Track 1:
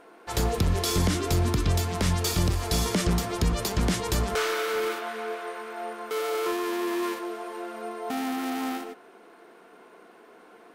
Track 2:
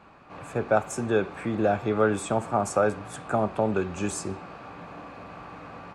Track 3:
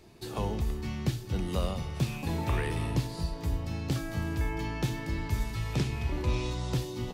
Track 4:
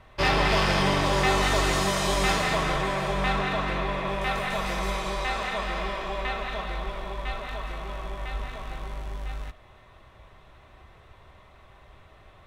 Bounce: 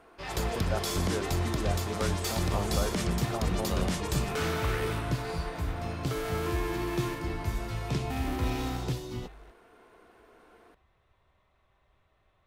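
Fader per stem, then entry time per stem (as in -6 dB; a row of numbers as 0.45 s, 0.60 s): -6.0 dB, -12.0 dB, -2.0 dB, -17.0 dB; 0.00 s, 0.00 s, 2.15 s, 0.00 s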